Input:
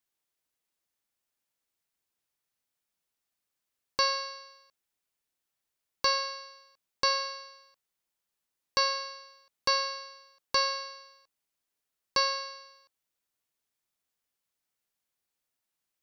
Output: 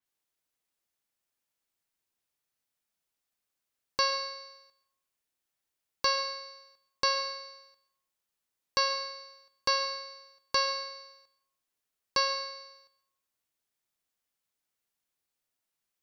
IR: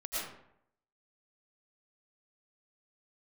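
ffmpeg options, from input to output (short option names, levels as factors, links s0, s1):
-filter_complex "[0:a]asplit=2[s0][s1];[1:a]atrim=start_sample=2205[s2];[s1][s2]afir=irnorm=-1:irlink=0,volume=0.158[s3];[s0][s3]amix=inputs=2:normalize=0,adynamicequalizer=threshold=0.0112:dfrequency=4500:dqfactor=0.7:tfrequency=4500:tqfactor=0.7:attack=5:release=100:ratio=0.375:range=3:mode=cutabove:tftype=highshelf,volume=0.841"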